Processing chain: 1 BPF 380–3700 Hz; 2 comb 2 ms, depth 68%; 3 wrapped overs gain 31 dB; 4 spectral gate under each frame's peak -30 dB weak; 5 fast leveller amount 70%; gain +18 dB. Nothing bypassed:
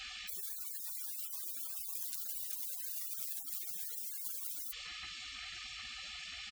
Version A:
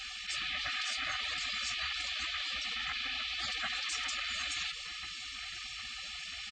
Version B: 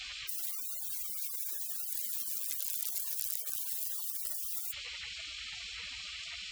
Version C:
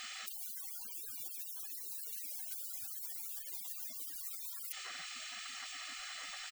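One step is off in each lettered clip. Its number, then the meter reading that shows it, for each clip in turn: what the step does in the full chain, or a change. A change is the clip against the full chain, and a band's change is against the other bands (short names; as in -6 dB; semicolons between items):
3, crest factor change -8.0 dB; 2, loudness change +4.5 LU; 1, 1 kHz band +5.5 dB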